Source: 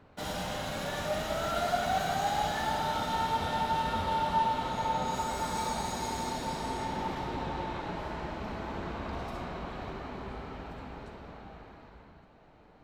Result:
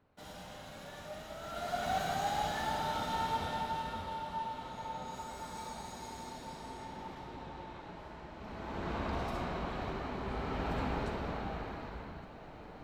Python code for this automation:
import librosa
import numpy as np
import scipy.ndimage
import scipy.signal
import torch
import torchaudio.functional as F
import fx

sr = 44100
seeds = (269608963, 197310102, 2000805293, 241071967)

y = fx.gain(x, sr, db=fx.line((1.39, -13.0), (1.9, -4.0), (3.34, -4.0), (4.22, -11.0), (8.32, -11.0), (8.95, 1.0), (10.21, 1.0), (10.78, 8.5)))